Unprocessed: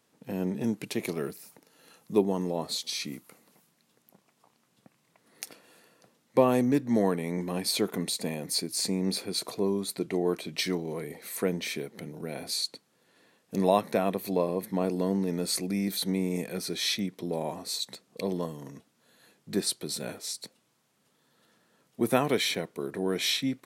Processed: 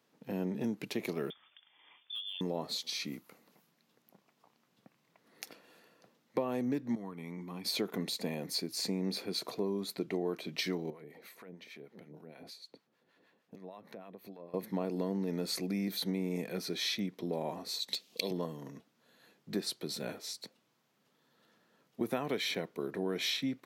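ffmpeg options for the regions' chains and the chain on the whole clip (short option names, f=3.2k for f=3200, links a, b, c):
-filter_complex "[0:a]asettb=1/sr,asplit=3[a][b][c];[a]atrim=end=1.304[d];[b]atrim=start=1.3:end=2.41,asetpts=PTS-STARTPTS,afade=t=in:d=0.004:c=qsin,afade=t=out:st=1.106:d=0.004:c=qsin,acompressor=threshold=-34dB:ratio=6:attack=3.2:release=140:knee=1:detection=peak,lowpass=f=3.1k:t=q:w=0.5098,lowpass=f=3.1k:t=q:w=0.6013,lowpass=f=3.1k:t=q:w=0.9,lowpass=f=3.1k:t=q:w=2.563,afreqshift=-3700,volume=31.5dB,asoftclip=hard,volume=-31.5dB[e];[c]atrim=start=2.406[f];[d][e]acrossfade=d=0.004:c1=hsin:c2=qsin[g];[g][f]acrossfade=d=0.004:c1=qsin:c2=hsin,asettb=1/sr,asplit=3[h][i][j];[h]atrim=end=6.954[k];[i]atrim=start=6.95:end=7.65,asetpts=PTS-STARTPTS,afade=t=in:d=0.004:c=qsin,afade=t=out:st=0.696:d=0.004:c=qsin,agate=range=-9dB:threshold=-26dB:ratio=16:release=100:detection=peak,aecho=1:1:0.9:0.57,atrim=end_sample=30870,acompressor=threshold=-34dB:ratio=12:attack=3.2:release=140:knee=1:detection=peak[l];[j]atrim=start=7.646[m];[k][l]acrossfade=d=0.004:c1=hsin:c2=qsin[n];[n][m]acrossfade=d=0.004:c1=qsin:c2=hsin,asettb=1/sr,asplit=3[o][p][q];[o]atrim=end=10.904[r];[p]atrim=start=10.9:end=14.54,asetpts=PTS-STARTPTS,afade=t=in:d=0.004:c=qsin,afade=t=out:st=3.636:d=0.004:c=qsin,bass=f=250:g=0,treble=f=4k:g=-5,acompressor=threshold=-42dB:ratio=4:attack=3.2:release=140:knee=1:detection=peak,acrossover=split=790[s][t];[s]aeval=exprs='val(0)*(1-0.7/2+0.7/2*cos(2*PI*6.5*n/s))':c=same[u];[t]aeval=exprs='val(0)*(1-0.7/2-0.7/2*cos(2*PI*6.5*n/s))':c=same[v];[u][v]amix=inputs=2:normalize=0[w];[q]atrim=start=14.536[x];[r][w]acrossfade=d=0.004:c1=hsin:c2=qsin[y];[y][x]acrossfade=d=0.004:c1=qsin:c2=hsin,asettb=1/sr,asplit=3[z][aa][ab];[z]atrim=end=17.884[ac];[aa]atrim=start=17.88:end=18.31,asetpts=PTS-STARTPTS,afade=t=in:d=0.004:c=qsin,afade=t=out:st=0.426:d=0.004:c=qsin,highpass=210,highshelf=f=2.1k:t=q:w=1.5:g=13[ad];[ab]atrim=start=18.306[ae];[ac][ad]acrossfade=d=0.004:c1=hsin:c2=qsin[af];[af][ae]acrossfade=d=0.004:c1=qsin:c2=hsin,highpass=120,equalizer=f=9.1k:t=o:w=0.77:g=-10.5,acompressor=threshold=-27dB:ratio=6,volume=-2.5dB"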